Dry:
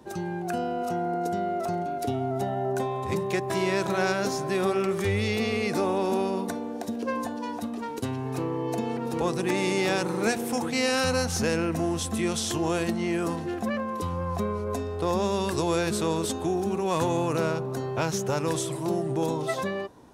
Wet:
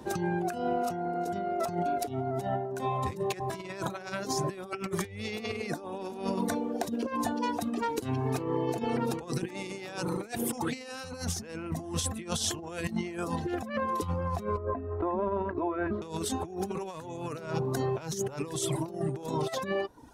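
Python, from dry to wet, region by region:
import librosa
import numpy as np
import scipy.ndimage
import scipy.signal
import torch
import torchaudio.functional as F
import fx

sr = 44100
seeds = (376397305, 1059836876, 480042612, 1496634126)

y = fx.chain(x, sr, fx.lowpass(hz=1700.0, slope=24),
    fx.over_compress(threshold_db=-31.0, ratio=-1.0),
    fx.comb(ms=3.1, depth=0.68), at=(14.57, 16.02))
y = fx.dereverb_blind(y, sr, rt60_s=0.78)
y = fx.low_shelf(y, sr, hz=66.0, db=3.0)
y = fx.over_compress(y, sr, threshold_db=-33.0, ratio=-0.5)
y = F.gain(torch.from_numpy(y), 1.0).numpy()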